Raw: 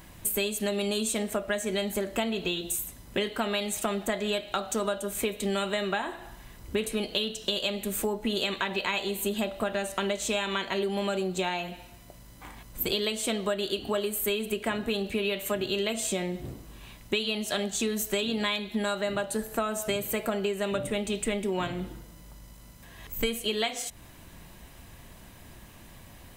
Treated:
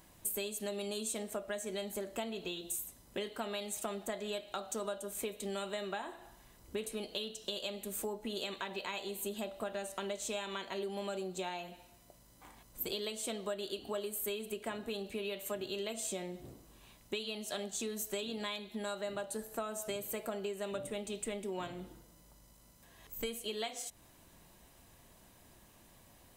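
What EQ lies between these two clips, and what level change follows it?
low shelf 290 Hz -10.5 dB; bell 2100 Hz -7.5 dB 2.2 oct; high shelf 12000 Hz -4.5 dB; -5.0 dB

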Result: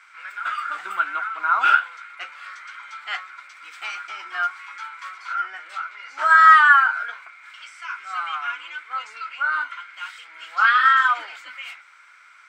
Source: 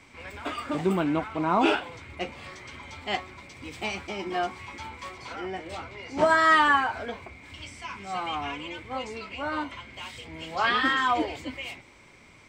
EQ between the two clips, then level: resonant high-pass 1400 Hz, resonance Q 11; -2.0 dB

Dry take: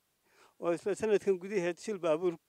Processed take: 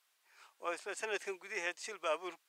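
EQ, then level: HPF 1100 Hz 12 dB/oct; high shelf 6600 Hz -5.5 dB; +4.5 dB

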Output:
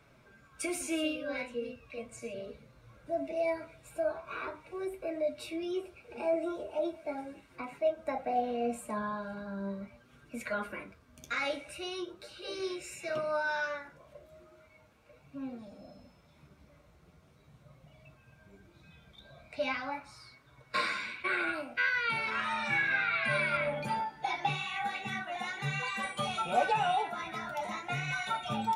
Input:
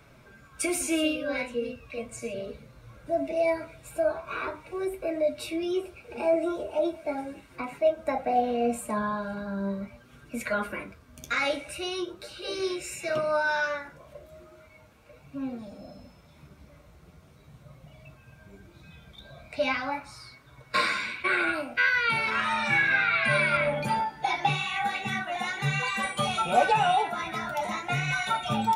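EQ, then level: low shelf 110 Hz -4 dB; high shelf 10000 Hz -5.5 dB; -6.0 dB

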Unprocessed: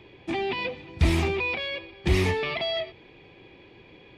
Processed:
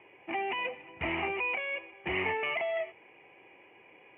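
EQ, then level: HPF 880 Hz 6 dB/oct; rippled Chebyshev low-pass 3000 Hz, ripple 6 dB; air absorption 130 m; +3.5 dB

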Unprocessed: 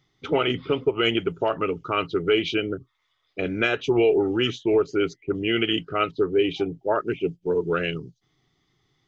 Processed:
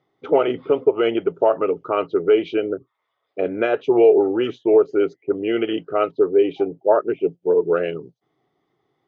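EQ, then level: band-pass 580 Hz, Q 1.5; +9.0 dB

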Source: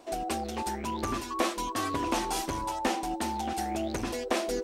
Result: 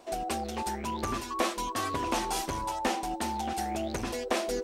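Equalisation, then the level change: bell 300 Hz -6.5 dB 0.25 oct; 0.0 dB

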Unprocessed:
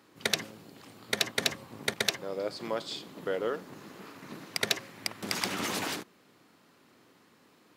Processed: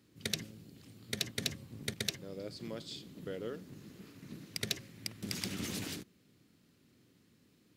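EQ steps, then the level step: passive tone stack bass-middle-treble 10-0-1; +15.0 dB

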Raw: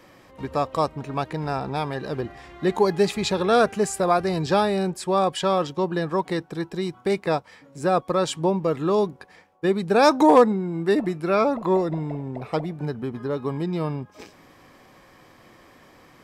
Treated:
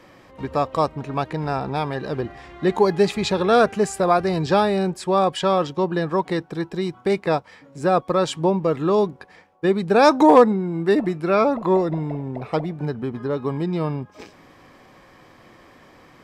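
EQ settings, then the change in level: high shelf 7700 Hz -8.5 dB; +2.5 dB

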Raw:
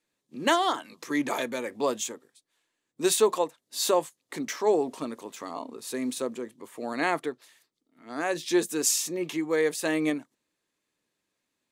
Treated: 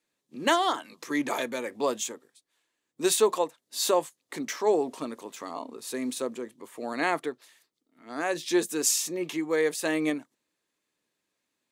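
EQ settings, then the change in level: low shelf 120 Hz -6.5 dB; 0.0 dB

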